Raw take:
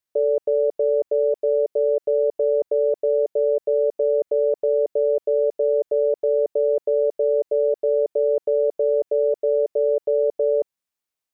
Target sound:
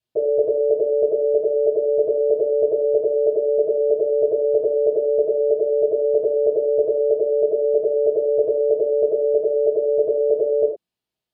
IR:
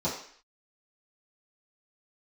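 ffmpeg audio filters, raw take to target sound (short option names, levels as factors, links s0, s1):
-filter_complex "[0:a]equalizer=f=560:t=o:w=0.77:g=-3[s0];[1:a]atrim=start_sample=2205,atrim=end_sample=4410,asetrate=30870,aresample=44100[s1];[s0][s1]afir=irnorm=-1:irlink=0,volume=0.531"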